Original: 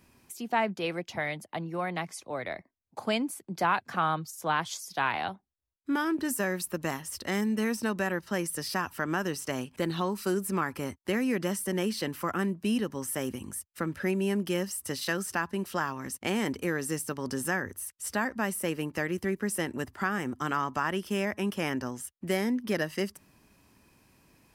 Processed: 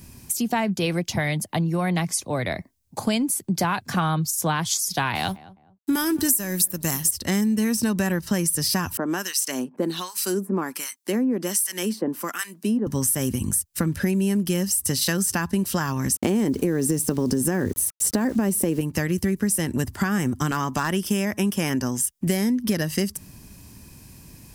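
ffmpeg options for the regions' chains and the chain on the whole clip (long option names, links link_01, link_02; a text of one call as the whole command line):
ffmpeg -i in.wav -filter_complex "[0:a]asettb=1/sr,asplit=3[link_01][link_02][link_03];[link_01]atrim=end=5.154[link_04];[link_02]atrim=start=5.15:end=7.11,asetpts=PTS-STARTPTS,afade=type=in:duration=0.004:curve=qsin,afade=type=out:start_time=1.956:duration=0.004:curve=qsin,aemphasis=mode=production:type=50kf,aeval=exprs='sgn(val(0))*max(abs(val(0))-0.00188,0)':channel_layout=same,asplit=2[link_05][link_06];[link_06]adelay=208,lowpass=frequency=1000:poles=1,volume=-20dB,asplit=2[link_07][link_08];[link_08]adelay=208,lowpass=frequency=1000:poles=1,volume=0.31[link_09];[link_05][link_07][link_09]amix=inputs=3:normalize=0,atrim=end_sample=86436[link_10];[link_03]atrim=start=7.106[link_11];[link_04][link_10]acrossfade=duration=0.004:curve1=hsin:curve2=qsin[link_12];[link_12][link_11]acrossfade=duration=0.004:curve1=qsin:curve2=hsin,asettb=1/sr,asplit=3[link_13][link_14][link_15];[link_13]atrim=end=8.974[link_16];[link_14]atrim=start=8.97:end=12.87,asetpts=PTS-STARTPTS,afade=type=in:duration=0.004:curve=qsin,afade=type=out:start_time=3.896:duration=0.004:curve=qsin,highpass=frequency=240:width=0.5412,highpass=frequency=240:width=1.3066,acrossover=split=1200[link_17][link_18];[link_17]aeval=exprs='val(0)*(1-1/2+1/2*cos(2*PI*1.3*n/s))':channel_layout=same[link_19];[link_18]aeval=exprs='val(0)*(1-1/2-1/2*cos(2*PI*1.3*n/s))':channel_layout=same[link_20];[link_19][link_20]amix=inputs=2:normalize=0[link_21];[link_15]atrim=start=12.866[link_22];[link_16][link_21]acrossfade=duration=0.004:curve1=hsin:curve2=qsin[link_23];[link_23][link_22]acrossfade=duration=0.004:curve1=qsin:curve2=hsin,asettb=1/sr,asplit=3[link_24][link_25][link_26];[link_24]atrim=end=16.164[link_27];[link_25]atrim=start=16.16:end=18.81,asetpts=PTS-STARTPTS,afade=type=in:duration=0.004:curve=qsin,afade=type=out:start_time=2.646:duration=0.004:curve=qsin,equalizer=frequency=370:width_type=o:width=2.3:gain=14,acompressor=threshold=-21dB:ratio=2.5:attack=3.2:release=140:knee=1:detection=peak,aeval=exprs='val(0)*gte(abs(val(0)),0.00473)':channel_layout=same[link_28];[link_26]atrim=start=18.806[link_29];[link_27][link_28]acrossfade=duration=0.004:curve1=hsin:curve2=qsin[link_30];[link_30][link_29]acrossfade=duration=0.004:curve1=qsin:curve2=hsin,asettb=1/sr,asplit=3[link_31][link_32][link_33];[link_31]atrim=end=20.514[link_34];[link_32]atrim=start=20.51:end=22.27,asetpts=PTS-STARTPTS,afade=type=in:duration=0.004:curve=qsin,afade=type=out:start_time=1.756:duration=0.004:curve=qsin,equalizer=frequency=79:width=0.88:gain=-8.5,bandreject=frequency=4200:width=11,asoftclip=type=hard:threshold=-18.5dB[link_35];[link_33]atrim=start=22.266[link_36];[link_34][link_35]acrossfade=duration=0.004:curve1=hsin:curve2=qsin[link_37];[link_37][link_36]acrossfade=duration=0.004:curve1=qsin:curve2=hsin,bass=frequency=250:gain=13,treble=frequency=4000:gain=12,bandreject=frequency=1300:width=18,acompressor=threshold=-27dB:ratio=6,volume=7.5dB" out.wav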